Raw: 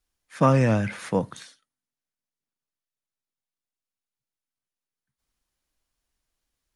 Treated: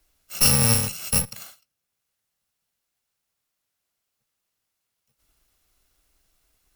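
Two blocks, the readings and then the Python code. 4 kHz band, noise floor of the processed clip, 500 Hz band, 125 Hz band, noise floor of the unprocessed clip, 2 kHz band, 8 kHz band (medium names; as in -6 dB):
+18.0 dB, -81 dBFS, -9.5 dB, -2.0 dB, under -85 dBFS, +1.5 dB, +23.5 dB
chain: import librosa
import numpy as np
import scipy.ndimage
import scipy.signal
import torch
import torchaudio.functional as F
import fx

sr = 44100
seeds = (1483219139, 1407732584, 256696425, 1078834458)

y = fx.bit_reversed(x, sr, seeds[0], block=128)
y = fx.cheby_harmonics(y, sr, harmonics=(4,), levels_db=(-9,), full_scale_db=-5.5)
y = fx.band_squash(y, sr, depth_pct=40)
y = F.gain(torch.from_numpy(y), 1.5).numpy()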